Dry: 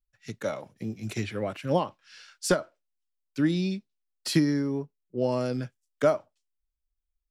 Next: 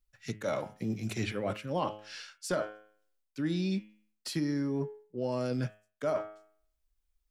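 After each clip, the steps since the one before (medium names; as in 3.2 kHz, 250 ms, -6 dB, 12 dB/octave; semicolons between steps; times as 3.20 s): de-hum 105.8 Hz, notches 32; reverse; compression 6:1, threshold -35 dBFS, peak gain reduction 16.5 dB; reverse; trim +5.5 dB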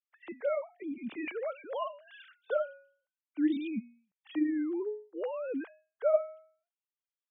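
formants replaced by sine waves; AAC 96 kbps 32 kHz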